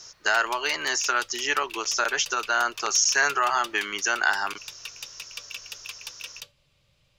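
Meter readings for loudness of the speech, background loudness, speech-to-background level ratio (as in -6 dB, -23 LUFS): -24.0 LUFS, -39.5 LUFS, 15.5 dB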